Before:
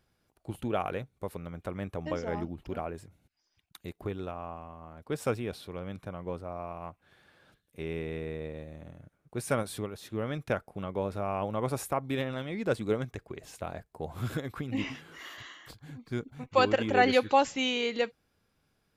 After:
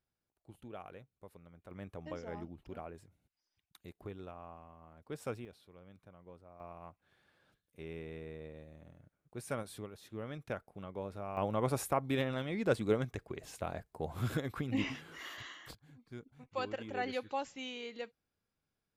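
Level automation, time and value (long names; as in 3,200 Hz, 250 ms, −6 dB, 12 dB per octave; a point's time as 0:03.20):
−17 dB
from 0:01.71 −10 dB
from 0:05.45 −18 dB
from 0:06.60 −9.5 dB
from 0:11.37 −1.5 dB
from 0:15.75 −14 dB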